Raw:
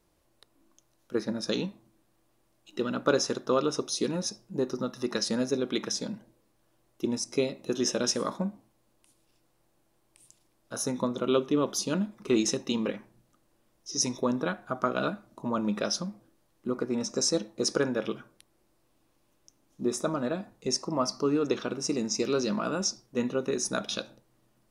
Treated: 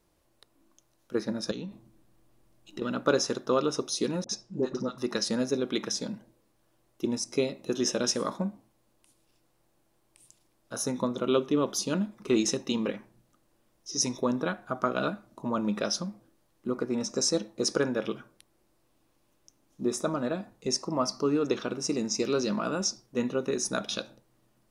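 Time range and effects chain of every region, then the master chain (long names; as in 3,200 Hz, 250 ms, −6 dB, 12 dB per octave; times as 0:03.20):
0:01.51–0:02.82: low-shelf EQ 260 Hz +9 dB + downward compressor 10 to 1, threshold −33 dBFS
0:04.24–0:04.98: low-pass filter 7,800 Hz 24 dB per octave + all-pass dispersion highs, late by 52 ms, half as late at 680 Hz
whole clip: no processing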